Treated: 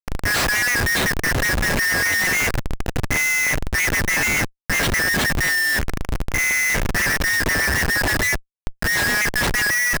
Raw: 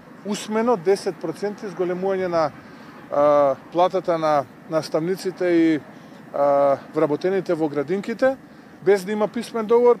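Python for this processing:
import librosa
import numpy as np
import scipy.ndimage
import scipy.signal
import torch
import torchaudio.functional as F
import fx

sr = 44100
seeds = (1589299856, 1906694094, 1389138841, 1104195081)

y = fx.band_shuffle(x, sr, order='2143')
y = fx.schmitt(y, sr, flips_db=-33.0)
y = y * librosa.db_to_amplitude(2.0)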